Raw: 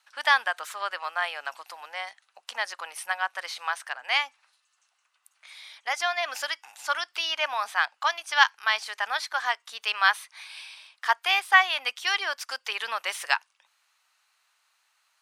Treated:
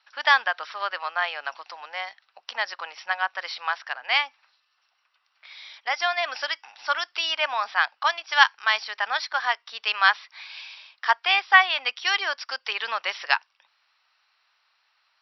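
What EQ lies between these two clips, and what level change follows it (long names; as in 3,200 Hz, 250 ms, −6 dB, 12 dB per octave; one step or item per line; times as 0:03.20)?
linear-phase brick-wall low-pass 5,800 Hz
+2.5 dB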